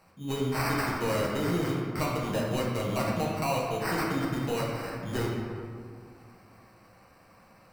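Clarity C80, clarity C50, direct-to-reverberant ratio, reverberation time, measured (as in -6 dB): 1.5 dB, 0.0 dB, -4.5 dB, 2.2 s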